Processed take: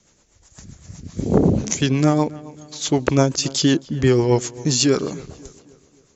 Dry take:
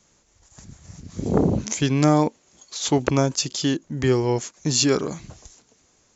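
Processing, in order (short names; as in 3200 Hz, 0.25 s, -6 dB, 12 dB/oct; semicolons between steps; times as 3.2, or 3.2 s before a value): rotary speaker horn 8 Hz; vocal rider 0.5 s; darkening echo 0.269 s, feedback 47%, low-pass 2900 Hz, level -19.5 dB; gain +5.5 dB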